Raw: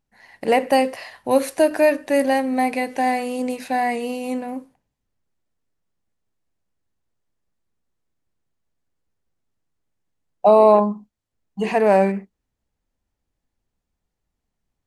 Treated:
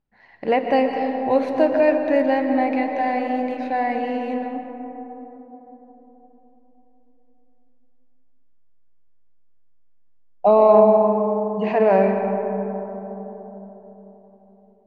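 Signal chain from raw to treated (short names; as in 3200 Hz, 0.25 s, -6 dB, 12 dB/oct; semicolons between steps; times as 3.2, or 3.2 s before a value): air absorption 260 m; reverb RT60 4.1 s, pre-delay 90 ms, DRR 4 dB; gain -1 dB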